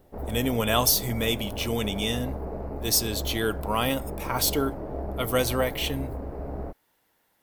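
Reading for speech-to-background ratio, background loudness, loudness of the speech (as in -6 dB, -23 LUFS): 9.0 dB, -35.5 LUFS, -26.5 LUFS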